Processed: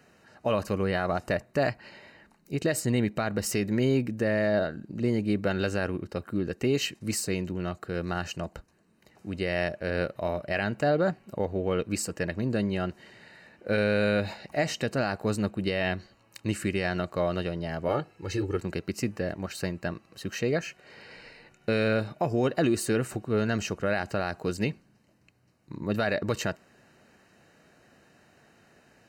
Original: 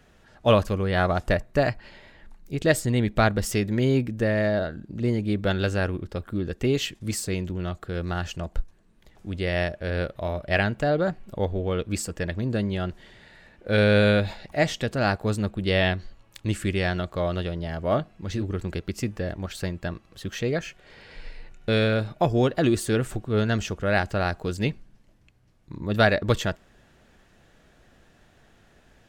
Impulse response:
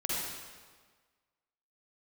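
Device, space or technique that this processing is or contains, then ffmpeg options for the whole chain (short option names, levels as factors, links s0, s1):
PA system with an anti-feedback notch: -filter_complex "[0:a]highpass=130,asuperstop=centerf=3400:order=12:qfactor=6.8,alimiter=limit=0.168:level=0:latency=1:release=74,asettb=1/sr,asplit=3[s0][s1][s2];[s0]atrim=end=17.884[s3];[s1]atrim=start=17.88:end=18.57,asetpts=PTS-STARTPTS,afade=t=in:d=0.004:c=qsin,afade=t=out:st=0.686:d=0.004:c=qsin,aecho=1:1:2.3:0.74,atrim=end_sample=30429[s4];[s2]atrim=start=18.566[s5];[s3][s4]acrossfade=d=0.004:c1=hsin:c2=qsin[s6];[s6][s5]acrossfade=d=0.004:c1=qsin:c2=hsin"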